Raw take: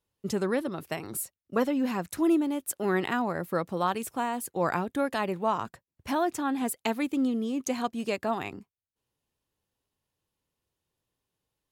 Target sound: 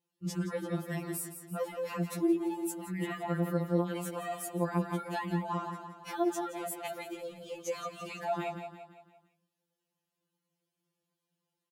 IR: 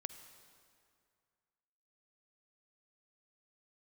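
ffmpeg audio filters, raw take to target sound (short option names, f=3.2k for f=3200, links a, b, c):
-filter_complex "[0:a]highpass=86,lowshelf=f=400:g=5.5,asplit=2[a][b];[b]aecho=0:1:170|340|510|680|850:0.299|0.14|0.0659|0.031|0.0146[c];[a][c]amix=inputs=2:normalize=0,alimiter=limit=-22dB:level=0:latency=1:release=38,afftfilt=real='re*2.83*eq(mod(b,8),0)':imag='im*2.83*eq(mod(b,8),0)':win_size=2048:overlap=0.75,volume=-1dB"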